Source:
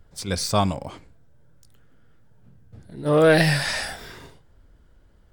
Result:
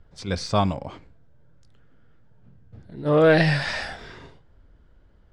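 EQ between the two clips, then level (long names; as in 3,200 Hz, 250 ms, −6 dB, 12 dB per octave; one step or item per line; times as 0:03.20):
high-frequency loss of the air 120 metres
0.0 dB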